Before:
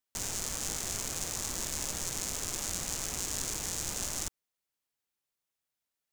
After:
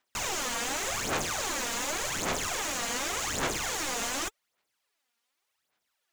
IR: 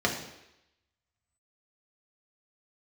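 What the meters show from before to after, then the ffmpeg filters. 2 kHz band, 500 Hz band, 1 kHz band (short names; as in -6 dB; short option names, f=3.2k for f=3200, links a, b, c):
+11.5 dB, +9.5 dB, +12.0 dB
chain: -filter_complex "[0:a]asplit=2[a][b];[b]highpass=f=720:p=1,volume=20dB,asoftclip=type=tanh:threshold=-14.5dB[c];[a][c]amix=inputs=2:normalize=0,lowpass=f=3.3k:p=1,volume=-6dB,aphaser=in_gain=1:out_gain=1:delay=4.3:decay=0.65:speed=0.87:type=sinusoidal,volume=-2.5dB"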